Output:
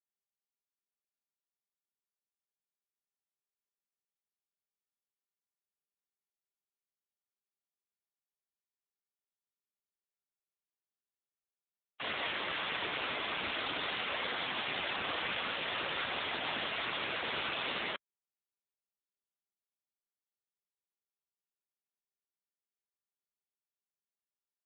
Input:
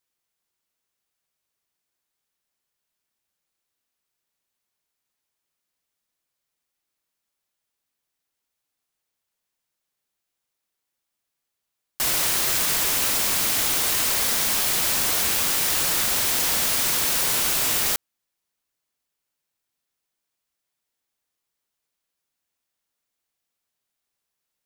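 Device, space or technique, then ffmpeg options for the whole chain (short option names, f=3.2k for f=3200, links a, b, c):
mobile call with aggressive noise cancelling: -filter_complex "[0:a]asettb=1/sr,asplit=3[a][b][c];[a]atrim=end=12.114[d];[b]atrim=start=12.11:end=12.92,asetpts=PTS-STARTPTS,afade=t=in:d=0.004:c=qsin,afade=t=out:st=0.806:d=0.004:c=qsin,acrossover=split=9200[e][f];[f]acompressor=threshold=-29dB:ratio=4:attack=1:release=60[g];[e][g]amix=inputs=2:normalize=0[h];[c]atrim=start=12.916[i];[d][h]acrossfade=d=0.004:c1=hsin:c2=qsin[j];[j][i]acrossfade=d=0.004:c1=qsin:c2=hsin,highpass=180,afftdn=nr=35:nf=-35,volume=-3dB" -ar 8000 -c:a libopencore_amrnb -b:a 7950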